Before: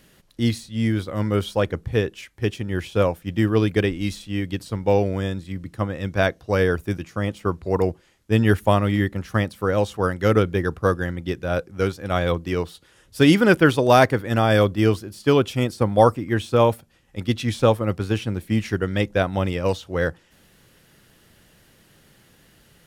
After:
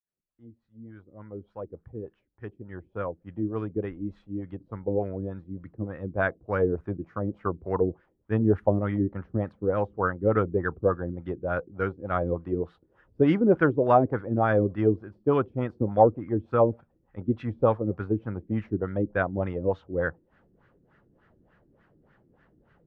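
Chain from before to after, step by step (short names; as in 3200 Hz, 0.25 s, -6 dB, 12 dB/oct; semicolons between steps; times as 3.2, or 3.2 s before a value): opening faded in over 7.01 s; LFO low-pass sine 3.4 Hz 300–1600 Hz; gain -7.5 dB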